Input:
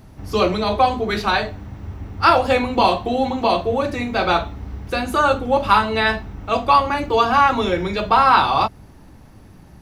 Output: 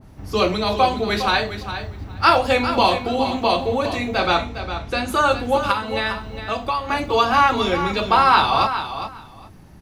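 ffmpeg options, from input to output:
ffmpeg -i in.wav -filter_complex "[0:a]asettb=1/sr,asplit=3[link_01][link_02][link_03];[link_01]atrim=end=4.204[link_04];[link_02]atrim=start=4.2:end=5.08,asetpts=PTS-STARTPTS,afade=type=in:duration=0.004:curve=qsin,afade=type=out:start_time=0.876:duration=0.004:curve=qsin,lowpass=9100[link_05];[link_03]atrim=start=5.076[link_06];[link_04][link_05]acrossfade=duration=0.004:curve1=hsin:curve2=qsin[link_07];[link_07][link_06]acrossfade=duration=0.004:curve1=qsin:curve2=hsin,asettb=1/sr,asplit=3[link_08][link_09][link_10];[link_08]atrim=end=5.714[link_11];[link_09]atrim=start=5.71:end=6.89,asetpts=PTS-STARTPTS,afade=type=in:duration=0.004:curve=qsin,afade=type=out:start_time=1.176:duration=0.004:curve=qsin,acompressor=threshold=-20dB:ratio=4[link_12];[link_10]atrim=start=6.886[link_13];[link_11][link_12]acrossfade=duration=0.004:curve1=hsin:curve2=qsin[link_14];[link_14][link_13]acrossfade=duration=0.004:curve1=qsin:curve2=hsin,asplit=2[link_15][link_16];[link_16]aecho=0:1:408|816:0.316|0.0538[link_17];[link_15][link_17]amix=inputs=2:normalize=0,adynamicequalizer=threshold=0.0398:dfrequency=1900:dqfactor=0.7:tfrequency=1900:tqfactor=0.7:attack=5:release=100:ratio=0.375:range=2:mode=boostabove:tftype=highshelf,volume=-1.5dB" out.wav

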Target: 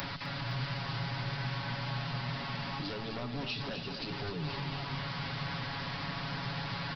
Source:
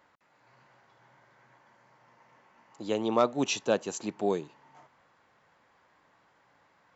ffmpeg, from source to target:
ffmpeg -i in.wav -filter_complex "[0:a]aeval=exprs='val(0)+0.5*0.0422*sgn(val(0))':channel_layout=same,acrossover=split=83|330[link_01][link_02][link_03];[link_01]acompressor=threshold=-56dB:ratio=4[link_04];[link_02]acompressor=threshold=-42dB:ratio=4[link_05];[link_03]acompressor=threshold=-33dB:ratio=4[link_06];[link_04][link_05][link_06]amix=inputs=3:normalize=0,aecho=1:1:7.2:0.97,aresample=11025,aeval=exprs='0.0501*(abs(mod(val(0)/0.0501+3,4)-2)-1)':channel_layout=same,aresample=44100,lowshelf=frequency=250:width_type=q:width=1.5:gain=10,asplit=2[link_07][link_08];[link_08]aecho=0:1:255|510|765|1020|1275|1530|1785:0.422|0.232|0.128|0.0702|0.0386|0.0212|0.0117[link_09];[link_07][link_09]amix=inputs=2:normalize=0,acompressor=mode=upward:threshold=-35dB:ratio=2.5,crystalizer=i=2.5:c=0,volume=-8.5dB" out.wav

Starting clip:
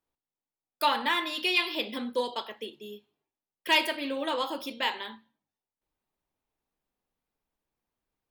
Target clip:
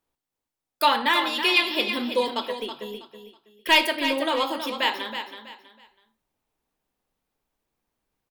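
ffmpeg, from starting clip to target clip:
ffmpeg -i in.wav -filter_complex "[0:a]asettb=1/sr,asplit=3[link_01][link_02][link_03];[link_01]atrim=end=2.584[link_04];[link_02]atrim=start=2.58:end=3.85,asetpts=PTS-STARTPTS,afade=type=in:duration=0.004:curve=qsin,afade=type=out:start_time=1.266:duration=0.004:curve=qsin,aeval=exprs='0.299*(cos(1*acos(clip(val(0)/0.299,-1,1)))-cos(1*PI/2))+0.00668*(cos(8*acos(clip(val(0)/0.299,-1,1)))-cos(8*PI/2))':channel_layout=same[link_05];[link_03]atrim=start=3.846[link_06];[link_04][link_05]acrossfade=duration=0.004:curve1=hsin:curve2=qsin[link_07];[link_07][link_06]acrossfade=duration=0.004:curve1=qsin:curve2=hsin,aecho=1:1:324|648|972:0.355|0.0993|0.0278,volume=5.5dB" out.wav

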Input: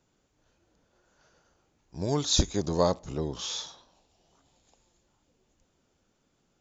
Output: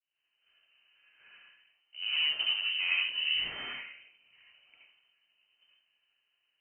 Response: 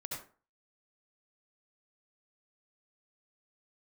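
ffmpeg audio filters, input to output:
-filter_complex "[0:a]agate=range=-33dB:threshold=-60dB:ratio=3:detection=peak,areverse,acompressor=threshold=-41dB:ratio=5,areverse,aeval=exprs='0.0473*(cos(1*acos(clip(val(0)/0.0473,-1,1)))-cos(1*PI/2))+0.00335*(cos(8*acos(clip(val(0)/0.0473,-1,1)))-cos(8*PI/2))':channel_layout=same,dynaudnorm=framelen=120:gausssize=3:maxgain=10dB[link_01];[1:a]atrim=start_sample=2205[link_02];[link_01][link_02]afir=irnorm=-1:irlink=0,lowpass=frequency=2600:width_type=q:width=0.5098,lowpass=frequency=2600:width_type=q:width=0.6013,lowpass=frequency=2600:width_type=q:width=0.9,lowpass=frequency=2600:width_type=q:width=2.563,afreqshift=-3100,volume=2dB"

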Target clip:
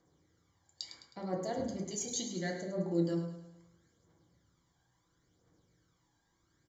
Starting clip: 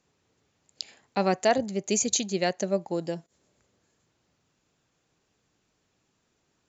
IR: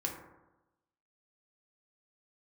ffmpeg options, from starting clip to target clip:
-filter_complex "[0:a]aphaser=in_gain=1:out_gain=1:delay=1.3:decay=0.61:speed=0.73:type=triangular,areverse,acompressor=threshold=-28dB:ratio=12,areverse,asuperstop=centerf=2600:order=4:qfactor=3.8,aecho=1:1:105|210|315|420|525:0.316|0.152|0.0729|0.035|0.0168[link_01];[1:a]atrim=start_sample=2205,afade=type=out:start_time=0.21:duration=0.01,atrim=end_sample=9702[link_02];[link_01][link_02]afir=irnorm=-1:irlink=0,volume=-6.5dB"

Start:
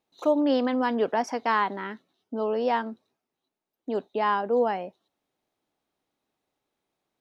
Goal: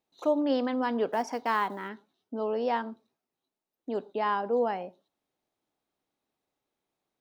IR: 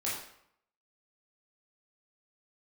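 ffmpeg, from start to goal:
-filter_complex "[0:a]asplit=3[link_01][link_02][link_03];[link_01]afade=type=out:start_time=1.1:duration=0.02[link_04];[link_02]acrusher=bits=8:mode=log:mix=0:aa=0.000001,afade=type=in:start_time=1.1:duration=0.02,afade=type=out:start_time=1.88:duration=0.02[link_05];[link_03]afade=type=in:start_time=1.88:duration=0.02[link_06];[link_04][link_05][link_06]amix=inputs=3:normalize=0,asplit=2[link_07][link_08];[link_08]asuperstop=centerf=2200:order=4:qfactor=1.2[link_09];[1:a]atrim=start_sample=2205,atrim=end_sample=6174[link_10];[link_09][link_10]afir=irnorm=-1:irlink=0,volume=-20.5dB[link_11];[link_07][link_11]amix=inputs=2:normalize=0,volume=-4dB"

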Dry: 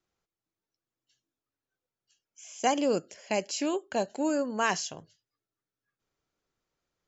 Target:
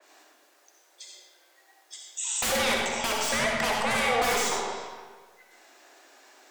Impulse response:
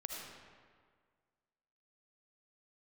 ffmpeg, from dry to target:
-filter_complex "[0:a]highpass=frequency=110:poles=1,equalizer=frequency=220:width=1.1:gain=-5,bandreject=frequency=2600:width=30,afreqshift=210,aeval=exprs='0.211*sin(PI/2*10*val(0)/0.211)':channel_layout=same,acompressor=threshold=-42dB:ratio=2[link_01];[1:a]atrim=start_sample=2205,asetrate=48510,aresample=44100[link_02];[link_01][link_02]afir=irnorm=-1:irlink=0,asetrate=48000,aresample=44100,adynamicequalizer=threshold=0.00501:dfrequency=3100:dqfactor=0.7:tfrequency=3100:tqfactor=0.7:attack=5:release=100:ratio=0.375:range=2.5:mode=cutabove:tftype=highshelf,volume=8.5dB"

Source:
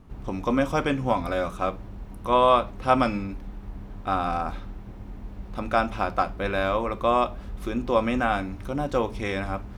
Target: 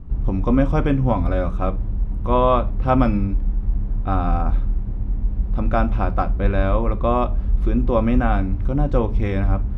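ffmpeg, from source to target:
ffmpeg -i in.wav -af "aemphasis=mode=reproduction:type=riaa" out.wav

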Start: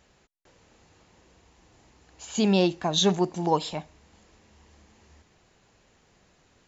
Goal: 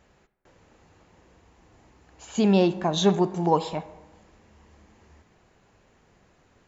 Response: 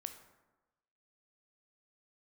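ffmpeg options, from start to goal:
-filter_complex "[0:a]asplit=2[link_01][link_02];[1:a]atrim=start_sample=2205,lowpass=2700[link_03];[link_02][link_03]afir=irnorm=-1:irlink=0,volume=3.5dB[link_04];[link_01][link_04]amix=inputs=2:normalize=0,volume=-3.5dB"

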